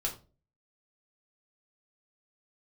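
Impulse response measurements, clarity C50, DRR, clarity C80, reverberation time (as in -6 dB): 11.0 dB, -2.0 dB, 16.5 dB, 0.35 s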